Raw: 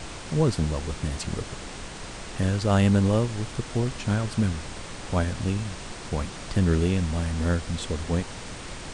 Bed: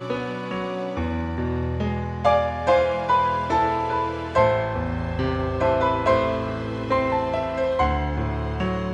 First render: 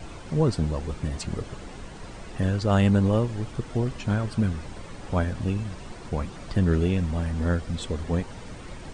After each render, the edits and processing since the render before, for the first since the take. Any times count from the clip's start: noise reduction 10 dB, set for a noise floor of -39 dBFS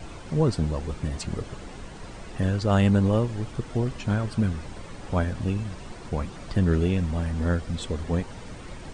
no audible change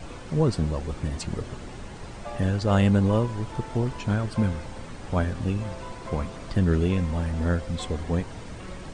add bed -20 dB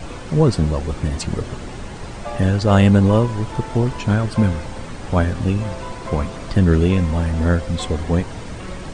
trim +7.5 dB

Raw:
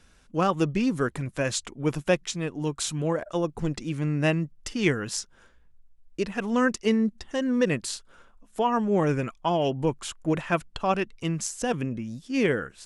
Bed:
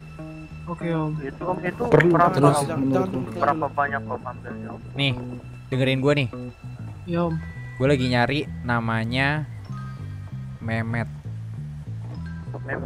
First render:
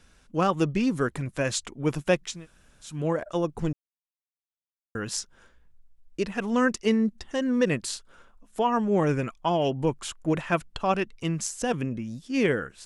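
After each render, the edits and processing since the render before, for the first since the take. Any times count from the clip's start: 2.35–2.93 s: room tone, crossfade 0.24 s; 3.73–4.95 s: mute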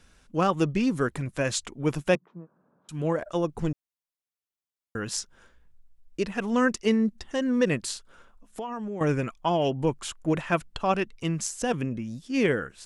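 2.15–2.89 s: Chebyshev band-pass 160–1100 Hz, order 3; 7.92–9.01 s: compression, threshold -31 dBFS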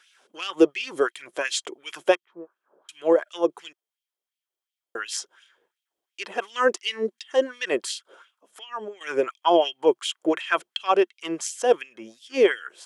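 LFO high-pass sine 2.8 Hz 480–2900 Hz; small resonant body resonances 360/3200 Hz, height 13 dB, ringing for 30 ms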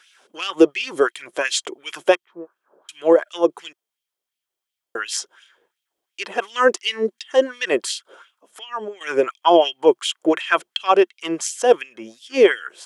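trim +5 dB; peak limiter -1 dBFS, peak gain reduction 1.5 dB

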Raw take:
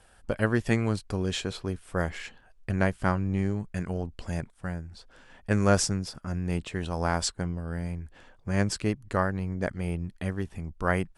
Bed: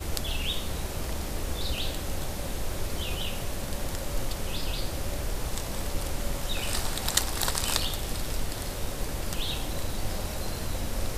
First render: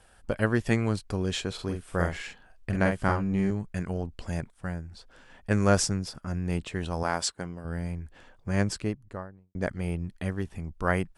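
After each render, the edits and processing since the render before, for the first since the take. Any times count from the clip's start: 1.54–3.51 s: doubling 46 ms -4.5 dB; 7.03–7.65 s: high-pass 290 Hz 6 dB/octave; 8.54–9.55 s: studio fade out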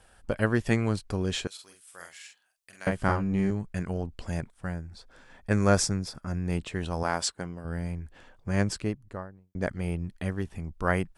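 1.47–2.87 s: differentiator; 4.76–6.52 s: band-stop 2.9 kHz, Q 8.9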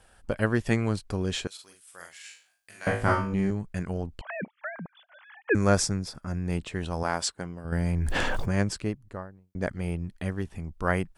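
2.22–3.34 s: flutter echo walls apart 3.2 m, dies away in 0.39 s; 4.21–5.55 s: formants replaced by sine waves; 7.72–8.55 s: level flattener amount 100%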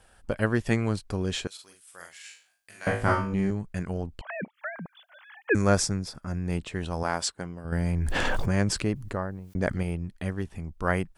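4.54–5.62 s: treble shelf 4.9 kHz +10 dB; 8.25–9.83 s: level flattener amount 50%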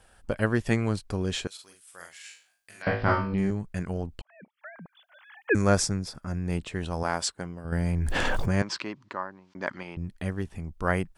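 2.82–3.38 s: careless resampling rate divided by 4×, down none, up filtered; 4.22–5.51 s: fade in; 8.62–9.97 s: cabinet simulation 380–5500 Hz, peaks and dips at 460 Hz -10 dB, 690 Hz -5 dB, 1 kHz +7 dB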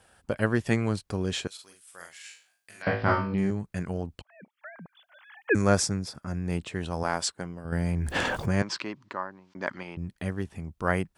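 high-pass 74 Hz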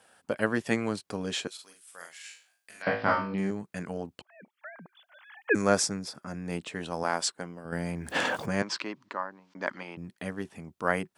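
high-pass 210 Hz 12 dB/octave; band-stop 370 Hz, Q 12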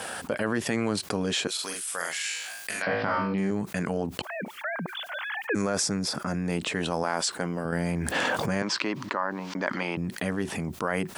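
peak limiter -18.5 dBFS, peak gain reduction 10.5 dB; level flattener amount 70%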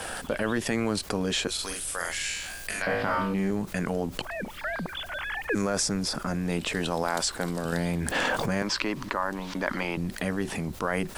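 add bed -16.5 dB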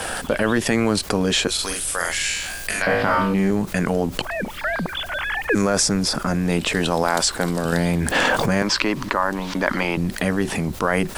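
trim +8 dB; peak limiter -2 dBFS, peak gain reduction 2 dB

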